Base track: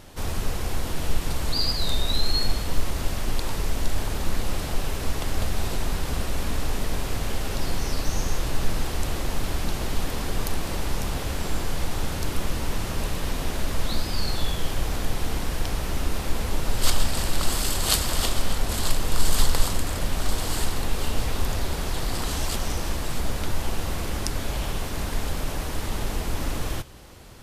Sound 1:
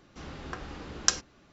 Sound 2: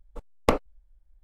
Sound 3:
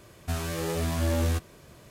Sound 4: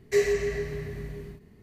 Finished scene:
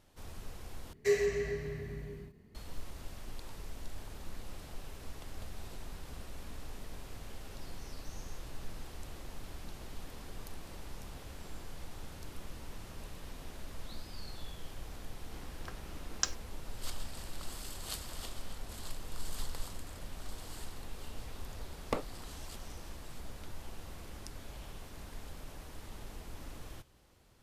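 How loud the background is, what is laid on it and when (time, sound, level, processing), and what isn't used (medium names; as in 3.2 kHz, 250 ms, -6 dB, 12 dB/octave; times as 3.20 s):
base track -19 dB
0.93 s: replace with 4 -5.5 dB
15.15 s: add 1 -8 dB + crossover distortion -48 dBFS
21.44 s: add 2 -12.5 dB
not used: 3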